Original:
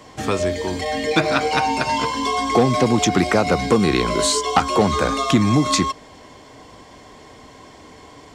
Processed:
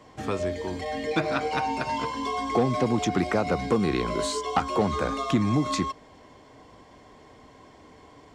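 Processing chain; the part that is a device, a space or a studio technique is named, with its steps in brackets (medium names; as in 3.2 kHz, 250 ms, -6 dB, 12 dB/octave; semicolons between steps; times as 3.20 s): behind a face mask (treble shelf 3 kHz -7.5 dB); trim -7 dB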